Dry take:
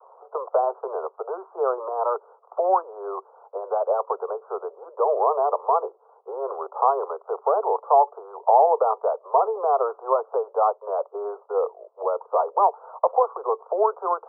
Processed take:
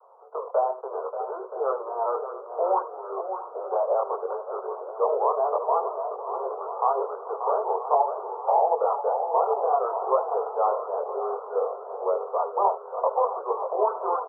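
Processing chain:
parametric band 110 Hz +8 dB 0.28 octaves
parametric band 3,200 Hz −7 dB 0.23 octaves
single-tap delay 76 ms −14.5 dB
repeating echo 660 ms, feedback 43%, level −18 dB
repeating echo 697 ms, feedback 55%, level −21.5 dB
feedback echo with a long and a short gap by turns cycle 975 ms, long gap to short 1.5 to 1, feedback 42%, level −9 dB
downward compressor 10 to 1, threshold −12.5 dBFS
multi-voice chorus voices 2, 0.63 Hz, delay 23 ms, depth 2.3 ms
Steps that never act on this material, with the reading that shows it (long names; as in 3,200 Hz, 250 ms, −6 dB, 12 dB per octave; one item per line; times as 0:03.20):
parametric band 110 Hz: nothing at its input below 340 Hz
parametric band 3,200 Hz: nothing at its input above 1,400 Hz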